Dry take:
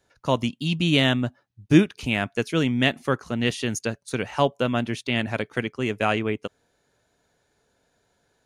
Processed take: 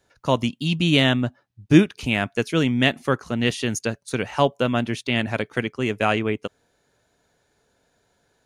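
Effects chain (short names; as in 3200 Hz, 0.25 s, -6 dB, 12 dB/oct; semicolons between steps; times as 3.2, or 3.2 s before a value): 1.03–1.74 high shelf 7600 Hz -5 dB; gain +2 dB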